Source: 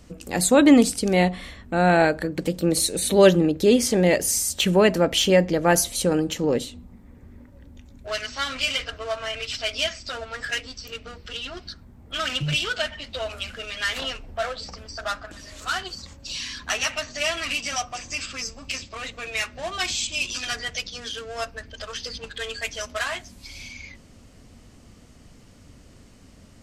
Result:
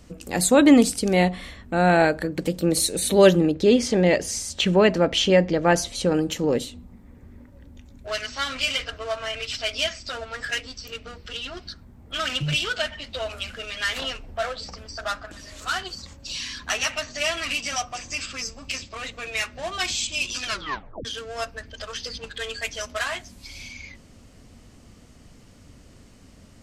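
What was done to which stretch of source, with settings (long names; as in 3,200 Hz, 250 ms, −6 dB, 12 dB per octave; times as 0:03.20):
0:03.54–0:06.15: low-pass filter 5,700 Hz
0:20.46: tape stop 0.59 s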